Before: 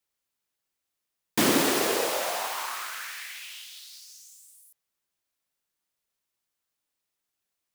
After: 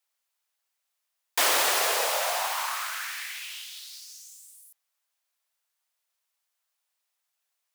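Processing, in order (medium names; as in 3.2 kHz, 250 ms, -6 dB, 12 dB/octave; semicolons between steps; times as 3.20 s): high-pass 590 Hz 24 dB/octave; in parallel at -8 dB: one-sided clip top -27.5 dBFS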